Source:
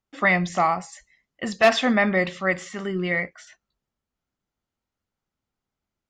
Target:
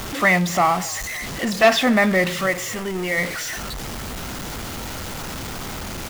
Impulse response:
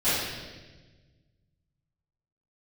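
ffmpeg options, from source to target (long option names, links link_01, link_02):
-filter_complex "[0:a]aeval=exprs='val(0)+0.5*0.0562*sgn(val(0))':channel_layout=same,asettb=1/sr,asplit=3[link_01][link_02][link_03];[link_01]atrim=end=2.464[link_04];[link_02]atrim=start=2.46:end=3.18,asetpts=PTS-STARTPTS,afade=type=in:duration=0.004:curve=qsin,afade=type=out:start_time=0.716:duration=0.004:curve=qsin,equalizer=frequency=160:width_type=o:width=0.67:gain=-9,equalizer=frequency=400:width_type=o:width=0.67:gain=-3,equalizer=frequency=1600:width_type=o:width=0.67:gain=-4,equalizer=frequency=4000:width_type=o:width=0.67:gain=-4[link_05];[link_03]atrim=start=3.176[link_06];[link_04][link_05]acrossfade=duration=0.004:curve1=hsin:curve2=qsin[link_07];[link_07][link_06]acrossfade=duration=0.004:curve1=qsin:curve2=hsin,asplit=2[link_08][link_09];[link_09]asplit=5[link_10][link_11][link_12][link_13][link_14];[link_10]adelay=269,afreqshift=-41,volume=-23.5dB[link_15];[link_11]adelay=538,afreqshift=-82,volume=-27.5dB[link_16];[link_12]adelay=807,afreqshift=-123,volume=-31.5dB[link_17];[link_13]adelay=1076,afreqshift=-164,volume=-35.5dB[link_18];[link_14]adelay=1345,afreqshift=-205,volume=-39.6dB[link_19];[link_15][link_16][link_17][link_18][link_19]amix=inputs=5:normalize=0[link_20];[link_08][link_20]amix=inputs=2:normalize=0,volume=1.5dB"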